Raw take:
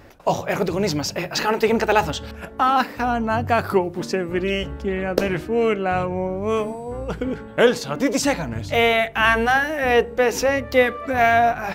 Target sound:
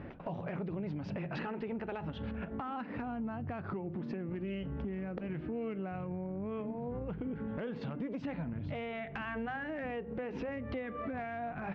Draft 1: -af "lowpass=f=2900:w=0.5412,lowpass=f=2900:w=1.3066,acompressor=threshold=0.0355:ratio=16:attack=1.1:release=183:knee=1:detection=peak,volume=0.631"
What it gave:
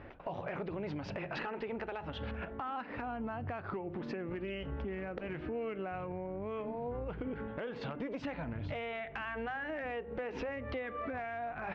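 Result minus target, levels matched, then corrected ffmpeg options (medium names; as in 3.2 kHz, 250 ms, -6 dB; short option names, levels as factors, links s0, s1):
250 Hz band -3.5 dB
-af "lowpass=f=2900:w=0.5412,lowpass=f=2900:w=1.3066,equalizer=f=180:w=0.85:g=12,acompressor=threshold=0.0355:ratio=16:attack=1.1:release=183:knee=1:detection=peak,volume=0.631"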